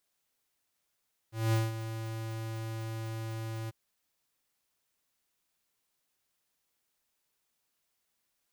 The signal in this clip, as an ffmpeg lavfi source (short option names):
-f lavfi -i "aevalsrc='0.0501*(2*lt(mod(112*t,1),0.5)-1)':d=2.393:s=44100,afade=t=in:d=0.208,afade=t=out:st=0.208:d=0.187:silence=0.266,afade=t=out:st=2.37:d=0.023"